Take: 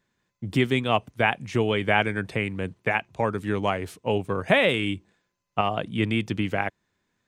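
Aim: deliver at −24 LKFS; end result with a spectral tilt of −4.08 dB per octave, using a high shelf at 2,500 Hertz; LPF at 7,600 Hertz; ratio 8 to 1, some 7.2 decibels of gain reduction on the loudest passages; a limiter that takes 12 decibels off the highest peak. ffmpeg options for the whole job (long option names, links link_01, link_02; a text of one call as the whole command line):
ffmpeg -i in.wav -af "lowpass=7600,highshelf=frequency=2500:gain=6.5,acompressor=threshold=-21dB:ratio=8,volume=9dB,alimiter=limit=-11.5dB:level=0:latency=1" out.wav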